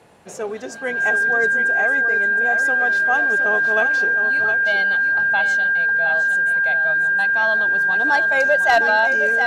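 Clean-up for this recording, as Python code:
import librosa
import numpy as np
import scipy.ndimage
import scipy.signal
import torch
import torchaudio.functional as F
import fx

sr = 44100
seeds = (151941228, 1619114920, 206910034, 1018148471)

y = fx.fix_declip(x, sr, threshold_db=-7.5)
y = fx.notch(y, sr, hz=1600.0, q=30.0)
y = fx.fix_echo_inverse(y, sr, delay_ms=714, level_db=-8.5)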